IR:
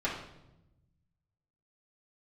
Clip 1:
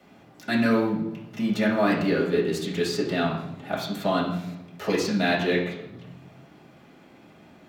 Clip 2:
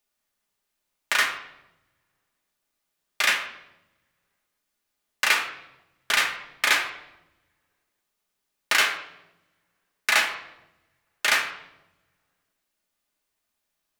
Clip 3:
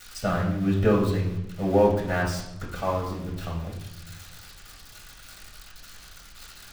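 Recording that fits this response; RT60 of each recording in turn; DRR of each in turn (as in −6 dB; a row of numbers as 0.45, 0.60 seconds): 1; 0.90, 0.90, 0.90 seconds; −9.5, 0.5, −17.0 decibels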